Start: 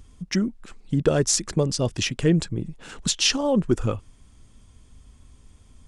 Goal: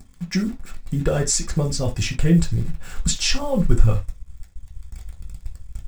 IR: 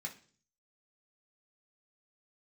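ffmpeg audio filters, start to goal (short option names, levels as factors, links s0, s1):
-filter_complex "[0:a]acrusher=bits=8:dc=4:mix=0:aa=0.000001,asubboost=boost=11.5:cutoff=72[s0];[1:a]atrim=start_sample=2205,atrim=end_sample=3969[s1];[s0][s1]afir=irnorm=-1:irlink=0,volume=1.33"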